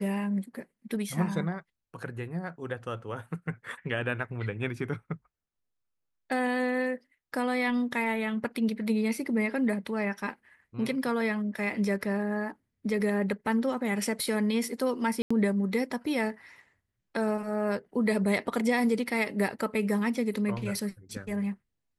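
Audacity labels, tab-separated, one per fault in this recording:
15.220000	15.300000	drop-out 85 ms

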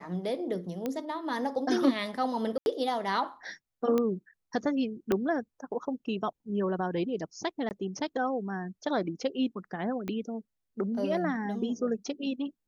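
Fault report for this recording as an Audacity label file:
0.860000	0.860000	click −19 dBFS
2.580000	2.660000	drop-out 81 ms
3.980000	3.980000	click −16 dBFS
5.120000	5.120000	click −14 dBFS
7.690000	7.710000	drop-out 19 ms
10.080000	10.080000	click −22 dBFS

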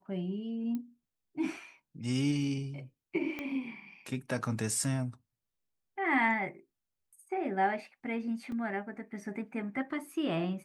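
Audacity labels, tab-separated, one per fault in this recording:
0.750000	0.750000	click −26 dBFS
3.390000	3.390000	click −24 dBFS
8.520000	8.520000	drop-out 2.5 ms

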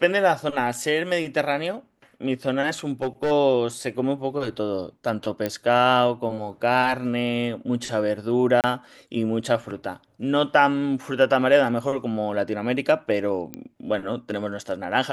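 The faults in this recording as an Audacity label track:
2.870000	3.320000	clipping −19.5 dBFS
5.460000	5.460000	click −12 dBFS
8.610000	8.640000	drop-out 28 ms
13.540000	13.540000	click −18 dBFS

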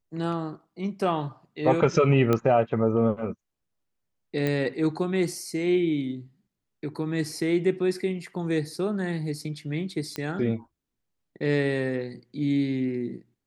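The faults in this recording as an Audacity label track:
2.330000	2.330000	click −11 dBFS
4.470000	4.470000	click −15 dBFS
10.160000	10.160000	click −17 dBFS

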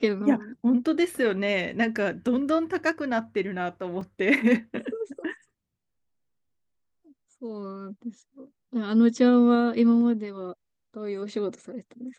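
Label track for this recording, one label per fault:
4.010000	4.010000	drop-out 3.3 ms

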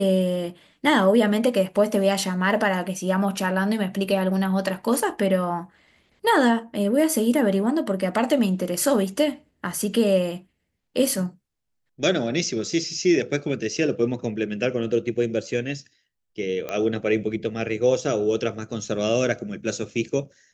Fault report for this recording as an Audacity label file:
16.690000	16.690000	click −15 dBFS

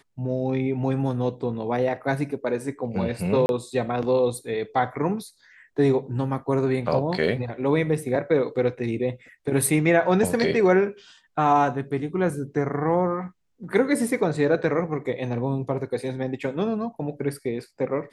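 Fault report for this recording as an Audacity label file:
3.460000	3.490000	drop-out 31 ms

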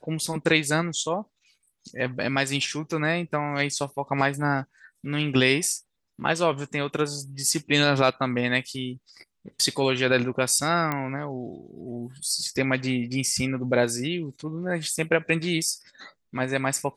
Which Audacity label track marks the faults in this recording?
10.920000	10.920000	click −13 dBFS

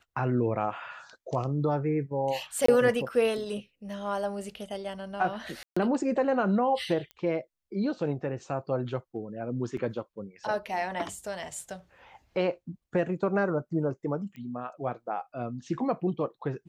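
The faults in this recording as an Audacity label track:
2.660000	2.680000	drop-out 24 ms
5.630000	5.760000	drop-out 135 ms
7.110000	7.110000	click −28 dBFS
9.770000	9.770000	drop-out 2.4 ms
14.360000	14.360000	click −33 dBFS

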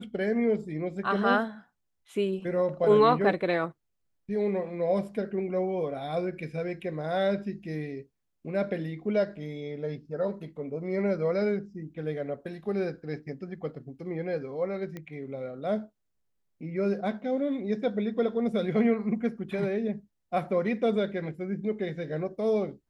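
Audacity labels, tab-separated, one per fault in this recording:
14.970000	14.970000	click −25 dBFS

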